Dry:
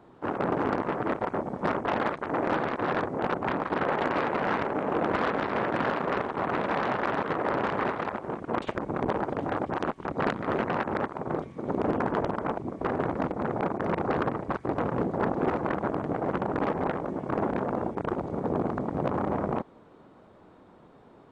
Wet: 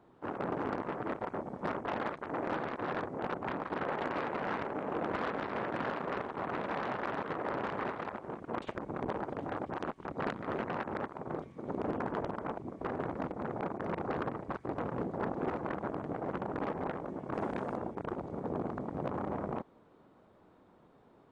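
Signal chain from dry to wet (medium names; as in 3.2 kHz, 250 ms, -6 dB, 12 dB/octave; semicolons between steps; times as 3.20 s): 17.34–17.77 s: treble shelf 2.7 kHz +9.5 dB; trim -8 dB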